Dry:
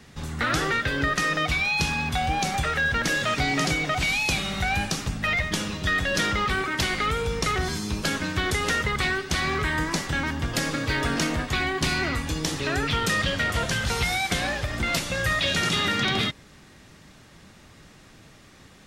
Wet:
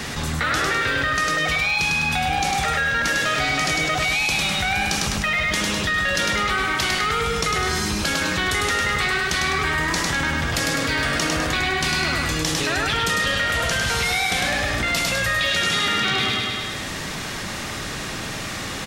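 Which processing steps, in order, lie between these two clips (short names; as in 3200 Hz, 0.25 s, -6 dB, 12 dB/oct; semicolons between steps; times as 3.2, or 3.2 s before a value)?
low shelf 430 Hz -7 dB; feedback echo 0.102 s, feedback 46%, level -3 dB; fast leveller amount 70%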